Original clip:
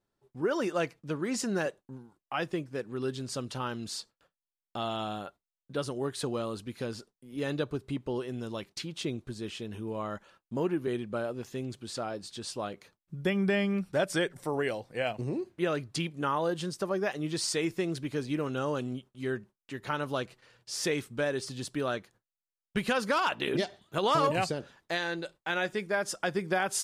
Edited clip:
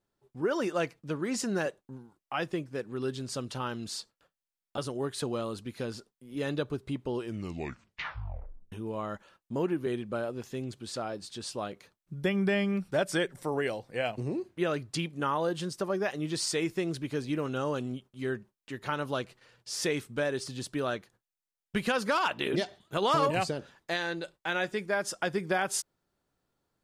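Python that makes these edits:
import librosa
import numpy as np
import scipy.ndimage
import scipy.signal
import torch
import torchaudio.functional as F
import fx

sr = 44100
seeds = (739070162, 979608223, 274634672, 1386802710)

y = fx.edit(x, sr, fx.cut(start_s=4.78, length_s=1.01),
    fx.tape_stop(start_s=8.15, length_s=1.58), tone=tone)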